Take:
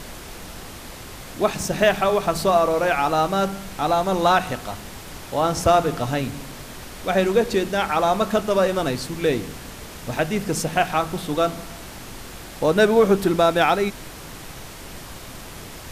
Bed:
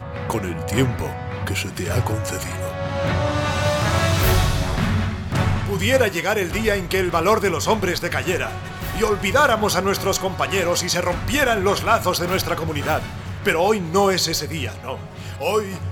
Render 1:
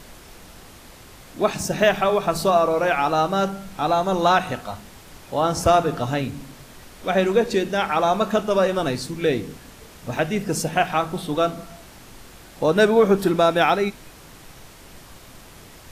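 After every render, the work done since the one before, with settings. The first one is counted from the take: noise print and reduce 7 dB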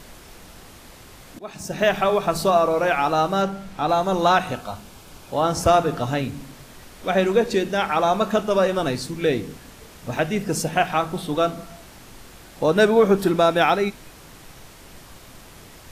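1.39–1.98 fade in, from -24 dB; 3.42–3.89 high shelf 6900 Hz -8.5 dB; 4.51–5.34 notch 1900 Hz, Q 6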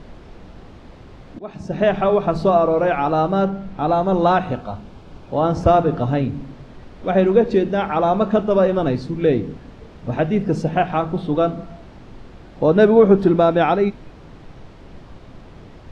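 Chebyshev low-pass 3900 Hz, order 2; tilt shelf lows +7.5 dB, about 1100 Hz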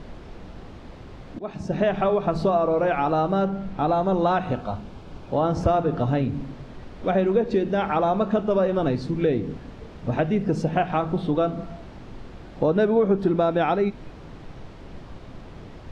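compressor 2.5:1, threshold -20 dBFS, peak gain reduction 9 dB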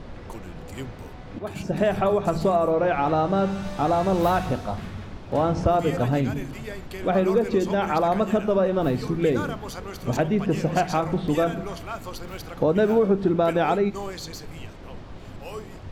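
add bed -17 dB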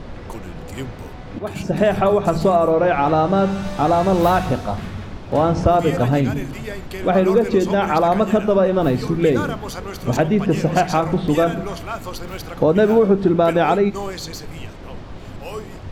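gain +5.5 dB

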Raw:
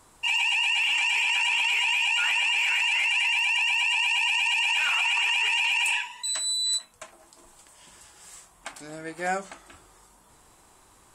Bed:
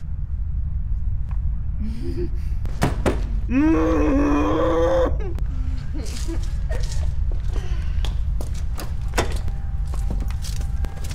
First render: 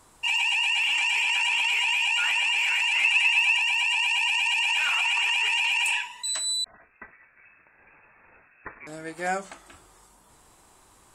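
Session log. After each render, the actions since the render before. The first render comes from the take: 2.96–3.58 small resonant body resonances 260/1200/2600/3700 Hz, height 11 dB; 6.64–8.87 inverted band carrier 2600 Hz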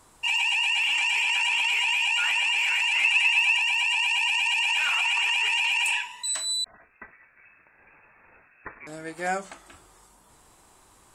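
6.05–6.5 doubler 36 ms -9 dB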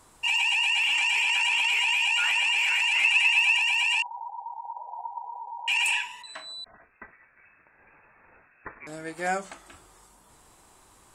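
4.02–5.68 brick-wall FIR band-pass 450–1000 Hz; 6.22–8.82 LPF 2200 Hz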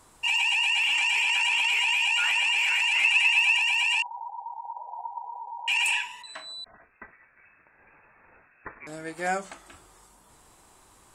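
nothing audible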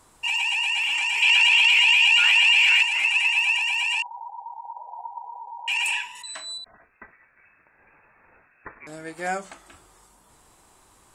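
1.22–2.83 bell 3300 Hz +9 dB 1.6 oct; 6.15–6.58 bell 9700 Hz +14.5 dB 1.7 oct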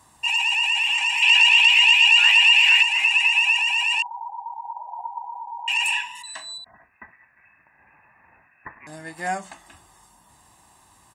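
HPF 65 Hz; comb 1.1 ms, depth 58%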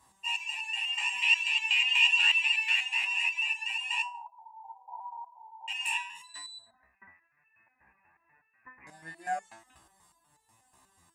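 stepped resonator 8.2 Hz 65–440 Hz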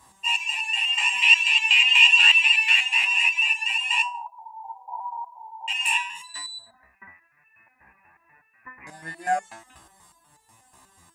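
gain +9 dB; limiter -3 dBFS, peak gain reduction 1 dB

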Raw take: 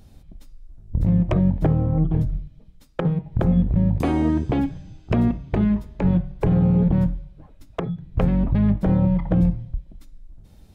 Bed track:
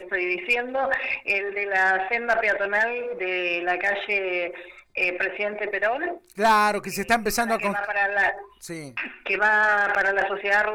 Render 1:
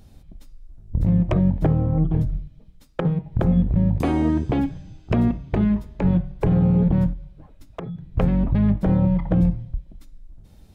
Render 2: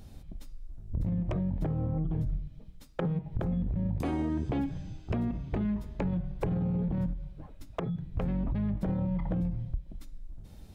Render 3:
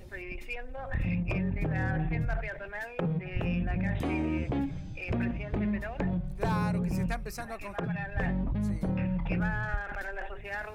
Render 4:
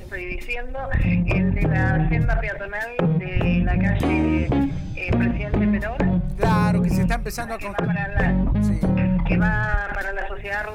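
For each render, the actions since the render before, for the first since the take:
7.13–7.95 compressor 2:1, threshold -32 dBFS
limiter -17.5 dBFS, peak gain reduction 7.5 dB; compressor 4:1, threshold -28 dBFS, peak gain reduction 7 dB
add bed track -16.5 dB
gain +10.5 dB

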